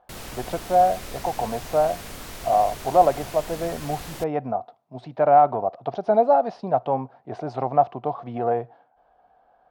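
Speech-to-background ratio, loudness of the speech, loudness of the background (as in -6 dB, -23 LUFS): 14.5 dB, -23.0 LUFS, -37.5 LUFS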